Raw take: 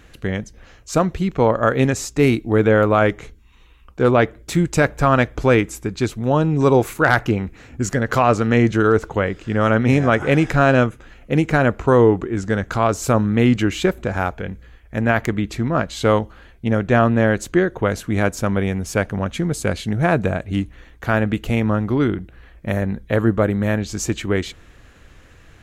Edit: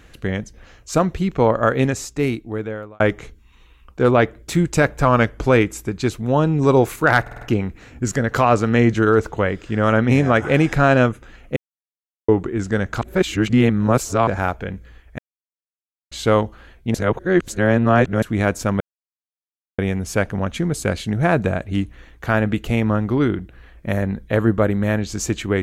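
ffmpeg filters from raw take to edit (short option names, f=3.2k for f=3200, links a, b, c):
-filter_complex "[0:a]asplit=17[a][b][c][d][e][f][g][h][i][j][k][l][m][n][o][p][q];[a]atrim=end=3,asetpts=PTS-STARTPTS,afade=t=out:st=1.64:d=1.36[r];[b]atrim=start=3:end=5.054,asetpts=PTS-STARTPTS,afade=t=in:d=0.004:c=hsin[s];[c]atrim=start=5.05:end=5.37,asetpts=PTS-STARTPTS,asetrate=41013,aresample=44100,atrim=end_sample=15174,asetpts=PTS-STARTPTS[t];[d]atrim=start=5.366:end=7.242[u];[e]atrim=start=7.188:end=7.242[v];[f]atrim=start=7.188:end=7.242[w];[g]atrim=start=7.188:end=7.242[x];[h]atrim=start=7.188:end=11.34,asetpts=PTS-STARTPTS,afade=t=out:st=4.148:d=0.004:c=hsin[y];[i]atrim=start=11.34:end=12.06,asetpts=PTS-STARTPTS,volume=0[z];[j]atrim=start=12.06:end=12.792,asetpts=PTS-STARTPTS,afade=t=in:d=0.004:c=hsin[aa];[k]atrim=start=12.788:end=14.052,asetpts=PTS-STARTPTS,areverse[ab];[l]atrim=start=14.048:end=14.96,asetpts=PTS-STARTPTS,afade=t=out:st=0.908:d=0.004:c=hsin[ac];[m]atrim=start=14.96:end=15.89,asetpts=PTS-STARTPTS,volume=0[ad];[n]atrim=start=15.89:end=16.722,asetpts=PTS-STARTPTS,afade=t=in:d=0.004:c=hsin[ae];[o]atrim=start=16.718:end=18.002,asetpts=PTS-STARTPTS,areverse[af];[p]atrim=start=17.998:end=18.58,asetpts=PTS-STARTPTS,afade=t=out:st=0.578:d=0.004:c=hsin,apad=pad_dur=0.98[ag];[q]atrim=start=18.58,asetpts=PTS-STARTPTS,afade=t=in:d=0.004:c=hsin[ah];[r][s]concat=n=2:v=0:a=1[ai];[ai][t]acrossfade=d=0.004:c1=hsin:c2=hsin[aj];[aj][u]acrossfade=d=0.004:c1=hsin:c2=hsin[ak];[ak][v]acrossfade=d=0.004:c1=hsin:c2=hsin[al];[al][w]acrossfade=d=0.004:c1=hsin:c2=hsin[am];[am][x]acrossfade=d=0.004:c1=hsin:c2=hsin[an];[y][z][aa]concat=n=3:v=0:a=1[ao];[an][ao]acrossfade=d=0.004:c1=hsin:c2=hsin[ap];[ap][ab]acrossfade=d=0.004:c1=hsin:c2=hsin[aq];[ac][ad][ae]concat=n=3:v=0:a=1[ar];[aq][ar]acrossfade=d=0.004:c1=hsin:c2=hsin[as];[as][af]acrossfade=d=0.004:c1=hsin:c2=hsin[at];[ag][ah]concat=n=2:v=0:a=1[au];[at][au]acrossfade=d=0.004:c1=hsin:c2=hsin"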